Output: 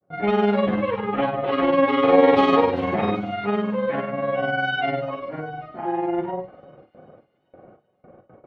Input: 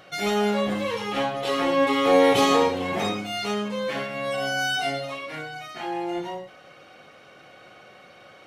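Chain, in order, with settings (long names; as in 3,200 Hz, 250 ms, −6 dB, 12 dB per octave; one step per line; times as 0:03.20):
low-pass that shuts in the quiet parts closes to 550 Hz, open at −16.5 dBFS
granular cloud 86 ms, grains 20 per second, spray 23 ms, pitch spread up and down by 0 semitones
in parallel at −3 dB: downward compressor, threshold −31 dBFS, peak gain reduction 15.5 dB
on the sum: noise gate with hold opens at −41 dBFS
high-frequency loss of the air 400 metres
on a send: delay with a high-pass on its return 390 ms, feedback 56%, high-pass 5,200 Hz, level −10 dB
on the sum: level +4.5 dB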